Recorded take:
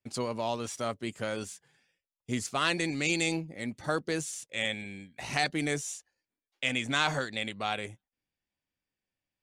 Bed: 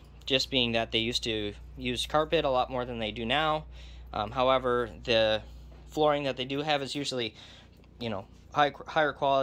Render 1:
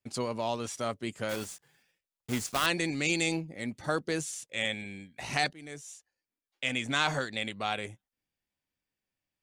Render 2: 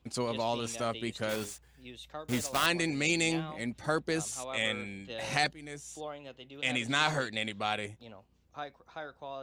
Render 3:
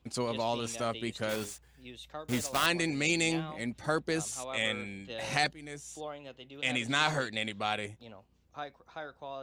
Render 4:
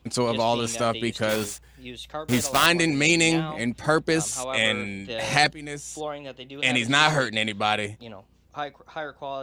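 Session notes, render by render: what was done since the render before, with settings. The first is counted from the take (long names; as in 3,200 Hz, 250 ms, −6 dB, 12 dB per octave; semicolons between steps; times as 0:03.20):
0:01.29–0:02.68: one scale factor per block 3 bits; 0:05.53–0:07.36: fade in equal-power, from −21 dB
mix in bed −16.5 dB
no processing that can be heard
level +9 dB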